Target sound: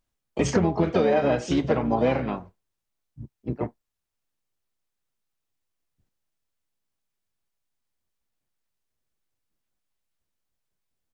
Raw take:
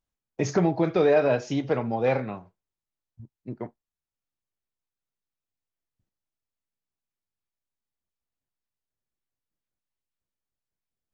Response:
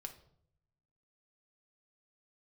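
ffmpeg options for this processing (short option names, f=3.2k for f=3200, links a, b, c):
-filter_complex "[0:a]asplit=3[a][b][c];[b]asetrate=22050,aresample=44100,atempo=2,volume=-8dB[d];[c]asetrate=55563,aresample=44100,atempo=0.793701,volume=-8dB[e];[a][d][e]amix=inputs=3:normalize=0,acompressor=threshold=-23dB:ratio=5,volume=5dB"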